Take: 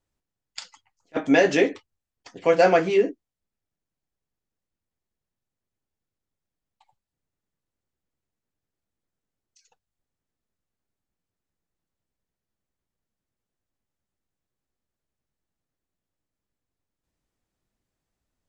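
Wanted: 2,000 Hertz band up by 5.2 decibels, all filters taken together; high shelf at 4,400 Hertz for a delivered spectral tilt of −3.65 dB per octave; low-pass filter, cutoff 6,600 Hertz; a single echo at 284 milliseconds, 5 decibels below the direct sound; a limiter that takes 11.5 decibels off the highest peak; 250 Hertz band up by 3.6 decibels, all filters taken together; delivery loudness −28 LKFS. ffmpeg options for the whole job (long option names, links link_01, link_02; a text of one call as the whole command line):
ffmpeg -i in.wav -af "lowpass=6600,equalizer=frequency=250:width_type=o:gain=4.5,equalizer=frequency=2000:width_type=o:gain=5.5,highshelf=frequency=4400:gain=5,alimiter=limit=-14.5dB:level=0:latency=1,aecho=1:1:284:0.562,volume=-3dB" out.wav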